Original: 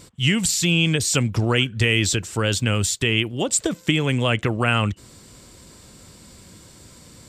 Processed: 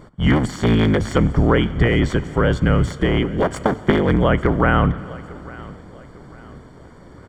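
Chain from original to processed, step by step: cycle switcher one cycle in 3, inverted; polynomial smoothing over 41 samples; notches 50/100 Hz; feedback echo 0.85 s, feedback 38%, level -20.5 dB; plate-style reverb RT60 2.8 s, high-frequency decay 0.95×, DRR 15.5 dB; gain +5.5 dB

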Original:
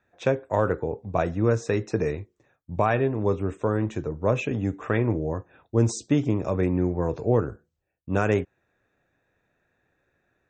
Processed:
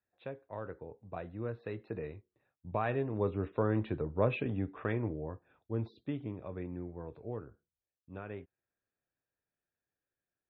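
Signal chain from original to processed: Doppler pass-by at 3.9, 6 m/s, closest 4.3 m; steep low-pass 4100 Hz 72 dB/oct; gain -5.5 dB

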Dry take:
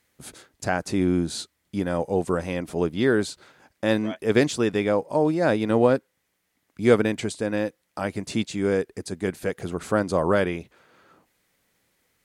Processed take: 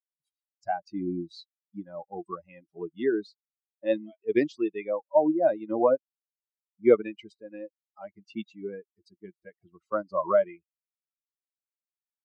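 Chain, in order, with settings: per-bin expansion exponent 3; speaker cabinet 280–3800 Hz, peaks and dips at 340 Hz +7 dB, 630 Hz +9 dB, 1100 Hz +7 dB, 1600 Hz -9 dB, 3300 Hz -10 dB

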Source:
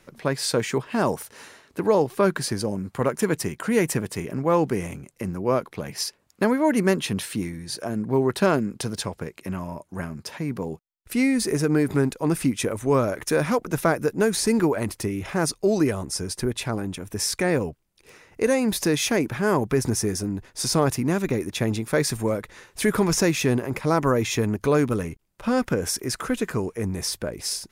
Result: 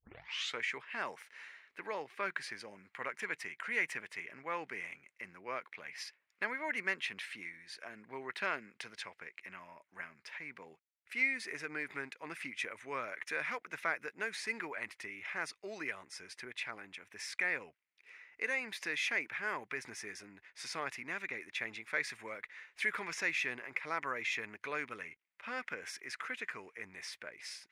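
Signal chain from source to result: tape start at the beginning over 0.59 s; band-pass 2100 Hz, Q 3.3

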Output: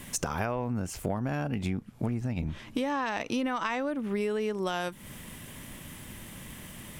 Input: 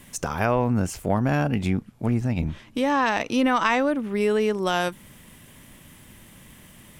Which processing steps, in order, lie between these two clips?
compressor 6:1, threshold -32 dBFS, peak gain reduction 14.5 dB; gain +4 dB

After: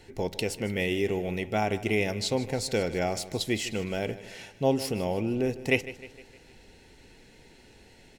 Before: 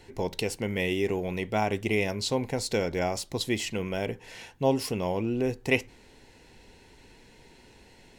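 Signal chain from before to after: notch 1000 Hz, Q 5.6; on a send: feedback echo 0.154 s, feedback 51%, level -16 dB

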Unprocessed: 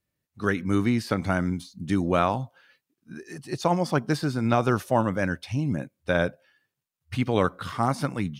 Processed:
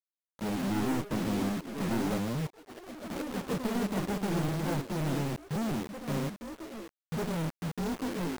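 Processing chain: gliding pitch shift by +10 st starting unshifted; elliptic low-pass 550 Hz, stop band 50 dB; resonant low shelf 110 Hz -9 dB, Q 3; one-sided clip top -29 dBFS; companded quantiser 2-bit; echoes that change speed 0.238 s, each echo +4 st, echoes 3, each echo -6 dB; upward expander 1.5:1, over -42 dBFS; gain -4.5 dB

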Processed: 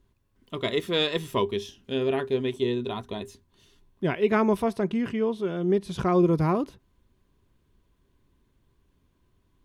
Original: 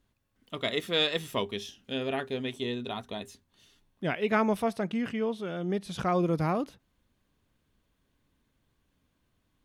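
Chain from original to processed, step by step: low shelf 160 Hz +10 dB; small resonant body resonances 380/1000 Hz, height 10 dB, ringing for 45 ms

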